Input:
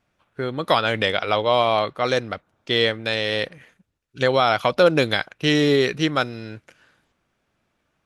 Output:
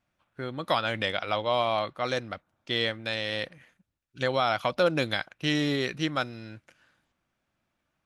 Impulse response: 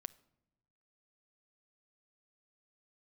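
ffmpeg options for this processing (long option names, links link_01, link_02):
-af "equalizer=frequency=430:width_type=o:width=0.23:gain=-9,volume=-7dB"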